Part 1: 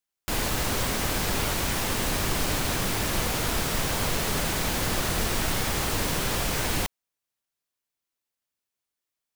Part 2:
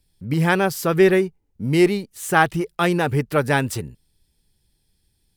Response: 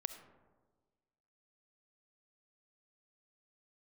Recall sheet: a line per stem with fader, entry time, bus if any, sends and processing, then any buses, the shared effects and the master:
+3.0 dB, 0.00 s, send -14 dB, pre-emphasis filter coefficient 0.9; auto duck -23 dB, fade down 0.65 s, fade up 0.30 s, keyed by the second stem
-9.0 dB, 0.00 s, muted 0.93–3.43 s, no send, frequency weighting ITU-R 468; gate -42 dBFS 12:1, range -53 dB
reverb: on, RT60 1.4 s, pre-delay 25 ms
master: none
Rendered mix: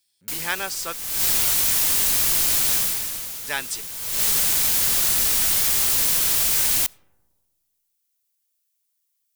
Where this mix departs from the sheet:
stem 1 +3.0 dB -> +9.5 dB; stem 2: missing gate -42 dBFS 12:1, range -53 dB

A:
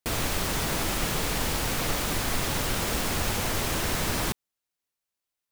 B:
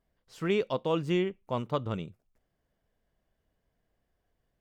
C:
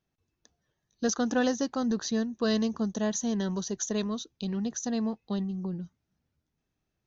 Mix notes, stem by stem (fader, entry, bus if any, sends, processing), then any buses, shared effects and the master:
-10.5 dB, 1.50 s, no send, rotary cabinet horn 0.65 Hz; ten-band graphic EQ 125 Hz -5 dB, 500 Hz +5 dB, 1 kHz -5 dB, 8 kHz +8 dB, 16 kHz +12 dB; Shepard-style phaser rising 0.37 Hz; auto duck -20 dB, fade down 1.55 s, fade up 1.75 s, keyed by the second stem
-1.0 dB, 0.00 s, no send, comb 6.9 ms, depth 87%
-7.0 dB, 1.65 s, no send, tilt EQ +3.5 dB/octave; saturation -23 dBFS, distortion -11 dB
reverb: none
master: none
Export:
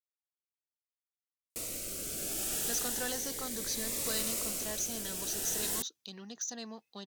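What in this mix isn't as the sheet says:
stem B: muted; master: extra bass shelf 120 Hz -9.5 dB

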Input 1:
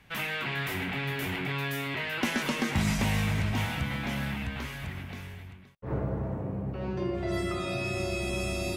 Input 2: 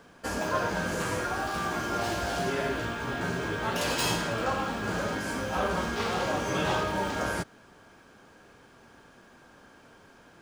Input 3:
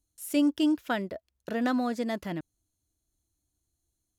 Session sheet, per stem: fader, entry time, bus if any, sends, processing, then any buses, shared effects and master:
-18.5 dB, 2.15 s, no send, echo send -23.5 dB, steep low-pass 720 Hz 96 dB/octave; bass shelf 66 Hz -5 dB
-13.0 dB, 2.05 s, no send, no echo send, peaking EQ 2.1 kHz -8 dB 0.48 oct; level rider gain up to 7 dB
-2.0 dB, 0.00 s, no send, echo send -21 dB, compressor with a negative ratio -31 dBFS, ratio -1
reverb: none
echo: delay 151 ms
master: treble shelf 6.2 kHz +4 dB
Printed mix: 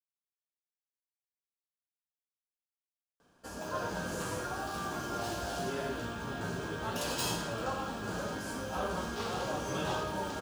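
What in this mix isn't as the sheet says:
stem 1: entry 2.15 s -> 3.40 s; stem 2: entry 2.05 s -> 3.20 s; stem 3: muted

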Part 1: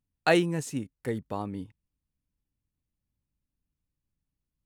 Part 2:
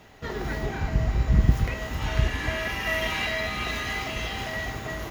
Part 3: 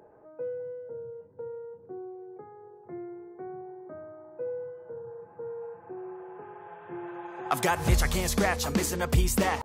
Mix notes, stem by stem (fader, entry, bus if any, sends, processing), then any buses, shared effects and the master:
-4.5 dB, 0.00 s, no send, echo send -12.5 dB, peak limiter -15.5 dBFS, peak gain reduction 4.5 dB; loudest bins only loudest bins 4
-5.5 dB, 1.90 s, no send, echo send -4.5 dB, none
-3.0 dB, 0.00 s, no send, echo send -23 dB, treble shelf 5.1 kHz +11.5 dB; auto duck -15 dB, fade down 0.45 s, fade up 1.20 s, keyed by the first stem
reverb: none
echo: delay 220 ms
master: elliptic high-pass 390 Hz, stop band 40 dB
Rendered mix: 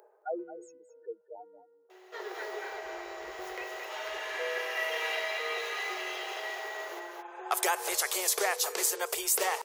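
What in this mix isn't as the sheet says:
nothing

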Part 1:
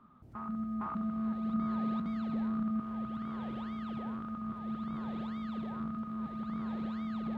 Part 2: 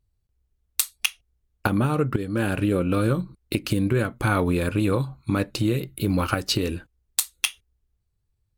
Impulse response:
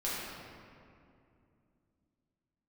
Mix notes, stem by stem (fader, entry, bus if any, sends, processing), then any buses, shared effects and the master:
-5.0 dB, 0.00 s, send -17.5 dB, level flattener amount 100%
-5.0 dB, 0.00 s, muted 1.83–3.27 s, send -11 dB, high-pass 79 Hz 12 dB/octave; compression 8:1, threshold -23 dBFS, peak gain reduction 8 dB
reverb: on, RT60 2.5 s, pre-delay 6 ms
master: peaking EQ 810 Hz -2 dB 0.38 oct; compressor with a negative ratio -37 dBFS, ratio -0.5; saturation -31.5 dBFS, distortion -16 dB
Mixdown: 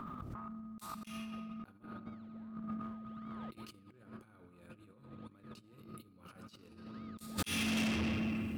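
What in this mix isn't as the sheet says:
stem 1 -5.0 dB -> +3.5 dB; stem 2 -5.0 dB -> +7.0 dB

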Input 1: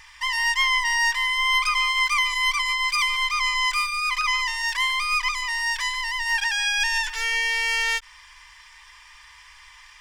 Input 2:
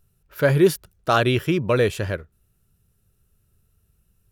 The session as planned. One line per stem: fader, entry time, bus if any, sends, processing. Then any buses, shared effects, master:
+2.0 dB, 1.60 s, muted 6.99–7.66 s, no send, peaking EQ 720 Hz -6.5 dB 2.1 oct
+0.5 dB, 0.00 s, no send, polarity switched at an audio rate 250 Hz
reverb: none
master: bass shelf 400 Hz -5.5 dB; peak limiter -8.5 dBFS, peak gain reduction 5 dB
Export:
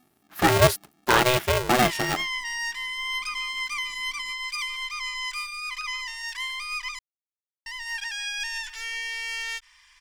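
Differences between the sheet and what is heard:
stem 1 +2.0 dB -> -6.5 dB; master: missing peak limiter -8.5 dBFS, peak gain reduction 5 dB

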